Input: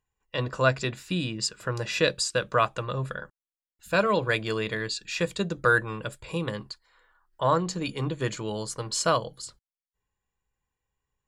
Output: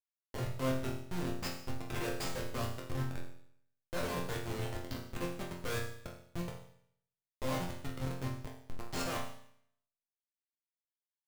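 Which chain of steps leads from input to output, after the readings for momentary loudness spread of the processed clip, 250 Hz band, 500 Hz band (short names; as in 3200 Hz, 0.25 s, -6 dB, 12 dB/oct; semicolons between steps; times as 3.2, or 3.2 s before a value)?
10 LU, -8.0 dB, -13.5 dB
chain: Schmitt trigger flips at -24 dBFS; resonator bank F2 sus4, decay 0.66 s; gain +11 dB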